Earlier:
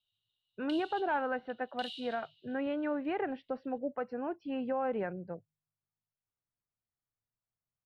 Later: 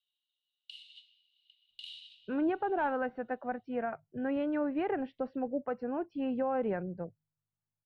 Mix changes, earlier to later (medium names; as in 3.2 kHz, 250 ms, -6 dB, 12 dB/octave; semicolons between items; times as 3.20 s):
speech: entry +1.70 s; master: add tilt EQ -1.5 dB/octave